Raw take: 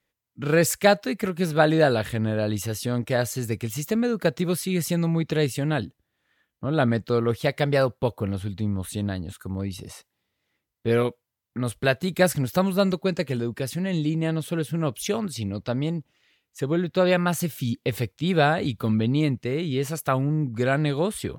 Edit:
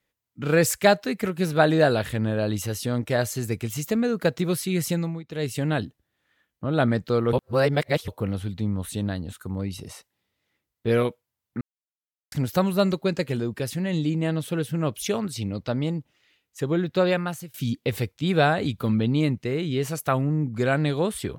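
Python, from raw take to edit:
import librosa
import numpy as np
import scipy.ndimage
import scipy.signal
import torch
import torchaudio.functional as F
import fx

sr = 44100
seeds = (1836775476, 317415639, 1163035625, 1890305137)

y = fx.edit(x, sr, fx.fade_down_up(start_s=4.91, length_s=0.68, db=-16.5, fade_s=0.32),
    fx.reverse_span(start_s=7.33, length_s=0.75),
    fx.silence(start_s=11.61, length_s=0.71),
    fx.fade_out_to(start_s=16.98, length_s=0.56, floor_db=-23.0), tone=tone)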